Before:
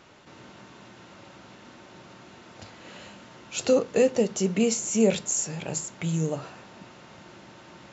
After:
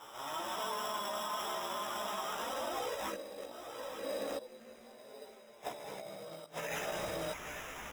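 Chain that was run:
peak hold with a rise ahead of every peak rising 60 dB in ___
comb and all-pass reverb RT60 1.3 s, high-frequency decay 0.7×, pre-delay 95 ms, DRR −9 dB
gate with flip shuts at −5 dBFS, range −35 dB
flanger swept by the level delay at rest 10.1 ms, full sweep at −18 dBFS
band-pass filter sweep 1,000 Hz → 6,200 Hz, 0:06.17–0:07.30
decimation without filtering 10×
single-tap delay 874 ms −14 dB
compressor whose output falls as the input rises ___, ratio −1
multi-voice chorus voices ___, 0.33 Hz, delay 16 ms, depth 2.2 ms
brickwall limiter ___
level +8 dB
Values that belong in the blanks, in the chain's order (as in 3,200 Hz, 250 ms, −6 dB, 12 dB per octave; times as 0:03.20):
2.67 s, −44 dBFS, 4, −37 dBFS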